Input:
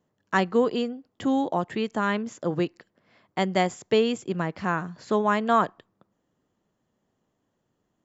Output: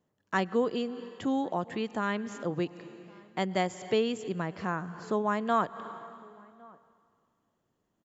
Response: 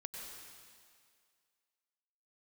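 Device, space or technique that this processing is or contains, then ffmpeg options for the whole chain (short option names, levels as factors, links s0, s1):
ducked reverb: -filter_complex "[0:a]asettb=1/sr,asplit=3[s0][s1][s2];[s0]atrim=end=4.674[s3];[s1]atrim=start=4.67:end=5.4,asetpts=PTS-STARTPTS,afade=t=in:d=0.004:c=qsin,afade=t=out:st=0.726:d=0.004:c=qsin,equalizer=f=3000:t=o:w=1.3:g=-5.5[s4];[s2]atrim=start=5.396[s5];[s3][s4]acrossfade=d=0.004:c1=hsin:c2=qsin[s6];[s6][s5]acrossfade=d=0.004:c1=qsin:c2=hsin,asplit=2[s7][s8];[s8]adelay=1108,volume=0.0447,highshelf=f=4000:g=-24.9[s9];[s7][s9]amix=inputs=2:normalize=0,asplit=3[s10][s11][s12];[1:a]atrim=start_sample=2205[s13];[s11][s13]afir=irnorm=-1:irlink=0[s14];[s12]apad=whole_len=403457[s15];[s14][s15]sidechaincompress=threshold=0.02:ratio=12:attack=7.4:release=174,volume=0.631[s16];[s10][s16]amix=inputs=2:normalize=0,volume=0.501"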